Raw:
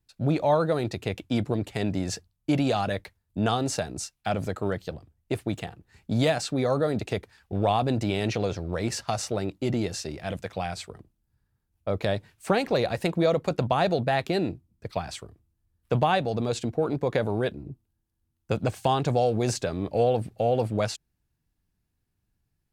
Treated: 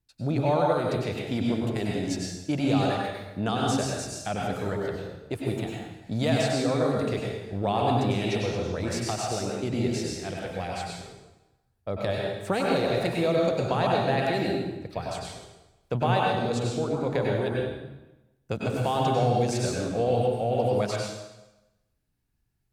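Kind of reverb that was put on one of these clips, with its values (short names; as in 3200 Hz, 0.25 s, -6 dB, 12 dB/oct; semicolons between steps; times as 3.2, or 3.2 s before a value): plate-style reverb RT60 1 s, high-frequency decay 0.9×, pre-delay 85 ms, DRR -2.5 dB; gain -4 dB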